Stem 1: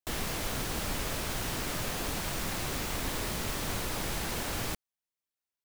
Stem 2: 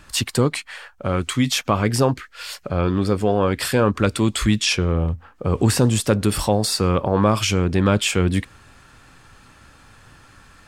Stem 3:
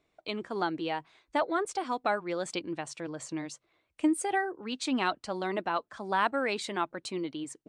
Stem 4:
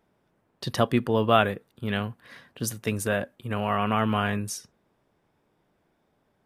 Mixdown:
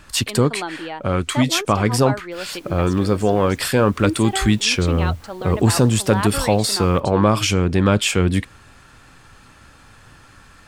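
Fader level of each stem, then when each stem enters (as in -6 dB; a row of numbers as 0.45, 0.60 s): -16.0 dB, +1.5 dB, +2.0 dB, off; 2.25 s, 0.00 s, 0.00 s, off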